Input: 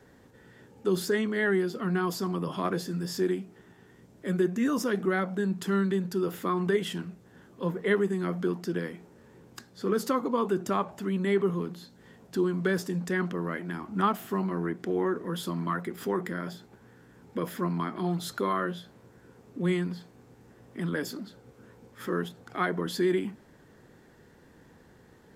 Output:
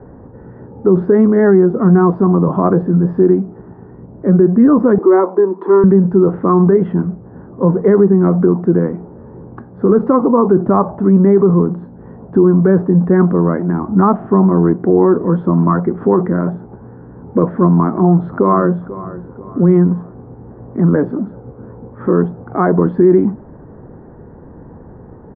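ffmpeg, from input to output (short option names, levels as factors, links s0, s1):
-filter_complex "[0:a]asettb=1/sr,asplit=3[s0][s1][s2];[s0]atrim=end=4.984[s3];[s1]atrim=start=4.98:end=5.84,asetpts=PTS-STARTPTS,afade=t=in:d=0.004:c=qsin,afade=t=out:st=0.856:d=0.004:c=qsin,highpass=f=350:w=0.5412,highpass=f=350:w=1.3066,equalizer=f=360:t=q:w=4:g=8,equalizer=f=670:t=q:w=4:g=-7,equalizer=f=1000:t=q:w=4:g=10,equalizer=f=1500:t=q:w=4:g=-6,equalizer=f=2800:t=q:w=4:g=-4,equalizer=f=4000:t=q:w=4:g=10,lowpass=f=4100:w=0.5412,lowpass=f=4100:w=1.3066[s4];[s2]atrim=start=5.836[s5];[s3][s4]acrossfade=d=0.004:c1=hsin:c2=qsin[s6];[s6][s5]acrossfade=d=0.004:c1=qsin:c2=hsin,asplit=2[s7][s8];[s8]afade=t=in:st=17.83:d=0.01,afade=t=out:st=18.75:d=0.01,aecho=0:1:490|980|1470:0.141254|0.0565015|0.0226006[s9];[s7][s9]amix=inputs=2:normalize=0,lowpass=f=1100:w=0.5412,lowpass=f=1100:w=1.3066,lowshelf=f=130:g=6.5,alimiter=level_in=8.91:limit=0.891:release=50:level=0:latency=1,volume=0.891"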